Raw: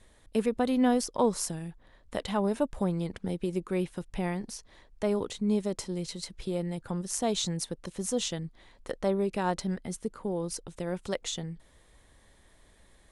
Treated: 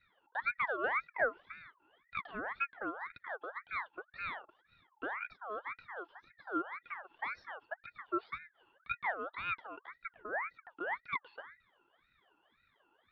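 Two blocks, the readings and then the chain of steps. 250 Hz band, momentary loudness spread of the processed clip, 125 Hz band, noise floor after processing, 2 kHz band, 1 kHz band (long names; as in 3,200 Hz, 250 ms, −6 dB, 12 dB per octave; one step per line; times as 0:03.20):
−19.0 dB, 15 LU, −28.5 dB, −76 dBFS, +7.0 dB, −3.0 dB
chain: formant resonators in series e
ring modulator whose carrier an LFO sweeps 1,400 Hz, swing 40%, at 1.9 Hz
level +3.5 dB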